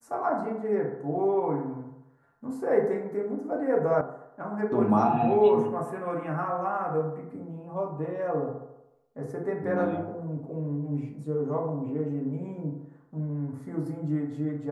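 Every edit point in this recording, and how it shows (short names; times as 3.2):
4.01 sound cut off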